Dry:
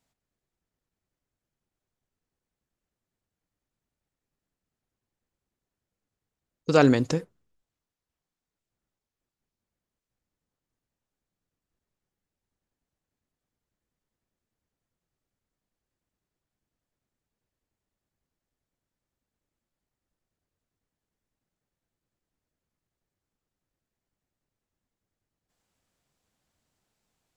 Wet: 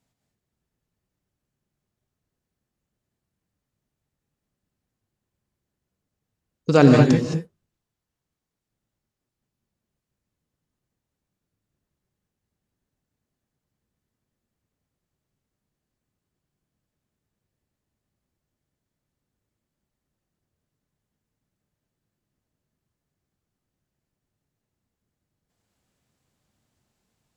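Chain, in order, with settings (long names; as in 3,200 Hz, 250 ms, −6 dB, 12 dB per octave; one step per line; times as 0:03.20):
reverb whose tail is shaped and stops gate 240 ms rising, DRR 1.5 dB
harmonic generator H 7 −35 dB, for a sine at −5 dBFS
parametric band 150 Hz +6.5 dB 2.4 octaves
level +1 dB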